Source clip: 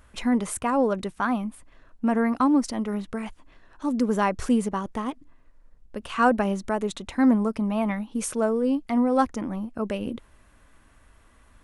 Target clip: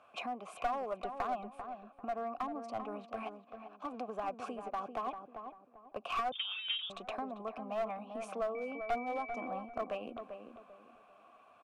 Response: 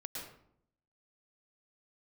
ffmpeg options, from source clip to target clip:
-filter_complex "[0:a]asettb=1/sr,asplit=3[link_01][link_02][link_03];[link_01]atrim=end=3.054[link_04];[link_02]atrim=start=3.05:end=4.08,asetpts=PTS-STARTPTS,afade=type=in:duration=0.004:curve=qsin,afade=type=out:start_time=1.026:duration=0.004:curve=qsin,aeval=exprs='if(lt(val(0),0),0.251*val(0),val(0))':channel_layout=same[link_05];[link_03]atrim=start=4.076[link_06];[link_04][link_05]acrossfade=duration=0.004:curve1=hsin:curve2=qsin[link_07];[link_07][link_06]acrossfade=duration=0.004:curve1=qsin:curve2=hsin,highpass=frequency=97:width=0.5412,highpass=frequency=97:width=1.3066,acrossover=split=320[link_08][link_09];[link_09]alimiter=limit=-18dB:level=0:latency=1:release=205[link_10];[link_08][link_10]amix=inputs=2:normalize=0,acompressor=threshold=-31dB:ratio=12,asplit=3[link_11][link_12][link_13];[link_11]bandpass=frequency=730:width_type=q:width=8,volume=0dB[link_14];[link_12]bandpass=frequency=1090:width_type=q:width=8,volume=-6dB[link_15];[link_13]bandpass=frequency=2440:width_type=q:width=8,volume=-9dB[link_16];[link_14][link_15][link_16]amix=inputs=3:normalize=0,asettb=1/sr,asplit=3[link_17][link_18][link_19];[link_17]atrim=end=8.554[link_20];[link_18]atrim=start=8.55:end=9.47,asetpts=PTS-STARTPTS,afade=type=in:duration=0.004:curve=qsin,afade=type=out:start_time=0.916:duration=0.004:curve=qsin,aeval=exprs='val(0)+0.00126*sin(2*PI*2300*n/s)':channel_layout=same[link_21];[link_19]atrim=start=9.466[link_22];[link_20][link_21]acrossfade=duration=0.004:curve1=hsin:curve2=qsin[link_23];[link_23][link_22]acrossfade=duration=0.004:curve1=qsin:curve2=hsin,aeval=exprs='clip(val(0),-1,0.00668)':channel_layout=same,asplit=2[link_24][link_25];[link_25]adelay=393,lowpass=frequency=1200:poles=1,volume=-6.5dB,asplit=2[link_26][link_27];[link_27]adelay=393,lowpass=frequency=1200:poles=1,volume=0.33,asplit=2[link_28][link_29];[link_29]adelay=393,lowpass=frequency=1200:poles=1,volume=0.33,asplit=2[link_30][link_31];[link_31]adelay=393,lowpass=frequency=1200:poles=1,volume=0.33[link_32];[link_26][link_28][link_30][link_32]amix=inputs=4:normalize=0[link_33];[link_24][link_33]amix=inputs=2:normalize=0,asettb=1/sr,asplit=3[link_34][link_35][link_36];[link_34]atrim=end=6.324[link_37];[link_35]atrim=start=6.32:end=6.9,asetpts=PTS-STARTPTS,afade=type=in:duration=0.004:curve=qsin,afade=type=out:start_time=0.576:duration=0.004:curve=qsin,lowpass=frequency=3200:width_type=q:width=0.5098,lowpass=frequency=3200:width_type=q:width=0.6013,lowpass=frequency=3200:width_type=q:width=0.9,lowpass=frequency=3200:width_type=q:width=2.563,afreqshift=-3800[link_38];[link_36]atrim=start=6.896[link_39];[link_37][link_38]acrossfade=duration=0.004:curve1=hsin:curve2=qsin[link_40];[link_40][link_39]acrossfade=duration=0.004:curve1=qsin:curve2=hsin,volume=10.5dB"

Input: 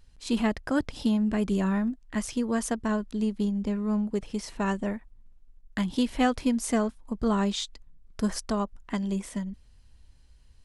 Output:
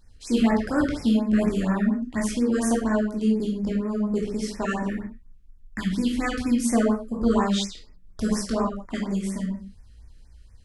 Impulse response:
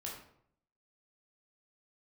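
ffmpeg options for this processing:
-filter_complex "[0:a]asettb=1/sr,asplit=3[link_01][link_02][link_03];[link_01]atrim=end=4.824[link_04];[link_02]atrim=start=4.82:end=6.65,asetpts=PTS-STARTPTS,afade=type=in:duration=0.004:curve=qsin,afade=type=out:start_time=1.826:duration=0.004:curve=qsin,equalizer=frequency=610:width_type=o:width=0.82:gain=-12.5[link_05];[link_03]atrim=start=6.646[link_06];[link_04][link_05]acrossfade=duration=0.004:curve1=hsin:curve2=qsin[link_07];[link_07][link_06]acrossfade=duration=0.004:curve1=qsin:curve2=hsin[link_08];[1:a]atrim=start_sample=2205,afade=type=out:start_time=0.25:duration=0.01,atrim=end_sample=11466[link_09];[link_08][link_09]afir=irnorm=-1:irlink=0,afftfilt=real='re*(1-between(b*sr/1024,780*pow(3700/780,0.5+0.5*sin(2*PI*4.2*pts/sr))/1.41,780*pow(3700/780,0.5+0.5*sin(2*PI*4.2*pts/sr))*1.41))':imag='im*(1-between(b*sr/1024,780*pow(3700/780,0.5+0.5*sin(2*PI*4.2*pts/sr))/1.41,780*pow(3700/780,0.5+0.5*sin(2*PI*4.2*pts/sr))*1.41))':win_size=1024:overlap=0.75,volume=6dB"

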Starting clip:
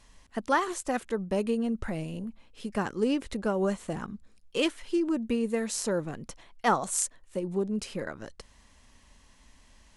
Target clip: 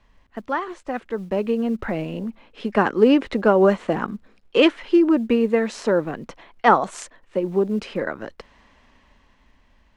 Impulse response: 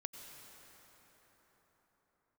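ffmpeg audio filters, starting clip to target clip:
-filter_complex "[0:a]lowpass=2700,acrossover=split=210[link_01][link_02];[link_01]acrusher=bits=5:mode=log:mix=0:aa=0.000001[link_03];[link_02]dynaudnorm=framelen=240:gausssize=13:maxgain=15dB[link_04];[link_03][link_04]amix=inputs=2:normalize=0"

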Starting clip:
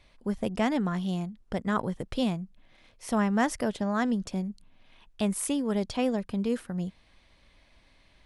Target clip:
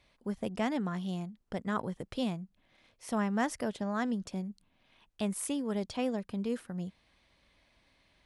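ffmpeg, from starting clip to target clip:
ffmpeg -i in.wav -af "highpass=frequency=71:poles=1,volume=-5dB" out.wav

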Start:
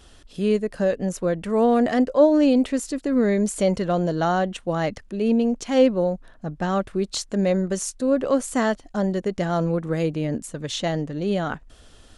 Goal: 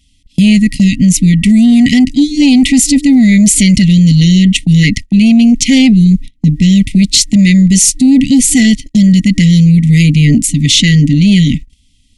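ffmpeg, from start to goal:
ffmpeg -i in.wav -af "afftfilt=real='re*(1-between(b*sr/4096,300,1900))':imag='im*(1-between(b*sr/4096,300,1900))':win_size=4096:overlap=0.75,apsyclip=26dB,agate=range=-26dB:threshold=-15dB:ratio=16:detection=peak,volume=-2dB" out.wav

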